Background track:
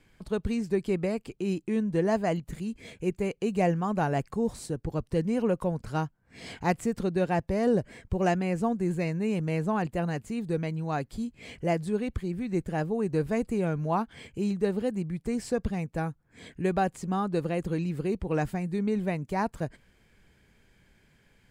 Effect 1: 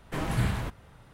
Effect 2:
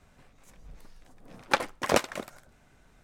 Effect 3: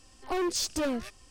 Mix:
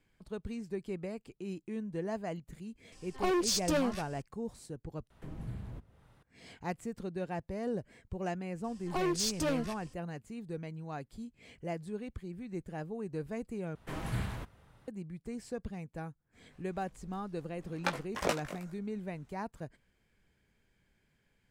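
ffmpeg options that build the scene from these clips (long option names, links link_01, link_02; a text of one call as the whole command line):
ffmpeg -i bed.wav -i cue0.wav -i cue1.wav -i cue2.wav -filter_complex "[3:a]asplit=2[link_01][link_02];[1:a]asplit=2[link_03][link_04];[0:a]volume=-11dB[link_05];[link_03]acrossover=split=260|630[link_06][link_07][link_08];[link_06]acompressor=threshold=-29dB:ratio=4[link_09];[link_07]acompressor=threshold=-47dB:ratio=4[link_10];[link_08]acompressor=threshold=-56dB:ratio=4[link_11];[link_09][link_10][link_11]amix=inputs=3:normalize=0[link_12];[2:a]flanger=delay=18:depth=2.3:speed=2.5[link_13];[link_05]asplit=3[link_14][link_15][link_16];[link_14]atrim=end=5.104[link_17];[link_12]atrim=end=1.13,asetpts=PTS-STARTPTS,volume=-9dB[link_18];[link_15]atrim=start=6.226:end=13.754[link_19];[link_04]atrim=end=1.13,asetpts=PTS-STARTPTS,volume=-8dB[link_20];[link_16]atrim=start=14.876[link_21];[link_01]atrim=end=1.3,asetpts=PTS-STARTPTS,volume=-0.5dB,afade=type=in:duration=0.004:curve=hsin,afade=type=out:start_time=1.296:duration=0.004:curve=hsin,adelay=2920[link_22];[link_02]atrim=end=1.3,asetpts=PTS-STARTPTS,volume=-2.5dB,afade=type=in:duration=0.004:curve=hsin,afade=type=out:start_time=1.296:duration=0.004:curve=hsin,adelay=8640[link_23];[link_13]atrim=end=3.03,asetpts=PTS-STARTPTS,volume=-5dB,afade=type=in:duration=0.004:curve=hsin,afade=type=out:start_time=3.026:duration=0.004:curve=hsin,adelay=16330[link_24];[link_17][link_18]acrossfade=duration=0.004:curve1=hsin:curve2=hsin[link_25];[link_25][link_19]acrossfade=duration=0.004:curve1=hsin:curve2=hsin[link_26];[link_26][link_20]acrossfade=duration=0.004:curve1=hsin:curve2=hsin[link_27];[link_27][link_21]acrossfade=duration=0.004:curve1=hsin:curve2=hsin[link_28];[link_28][link_22][link_23][link_24]amix=inputs=4:normalize=0" out.wav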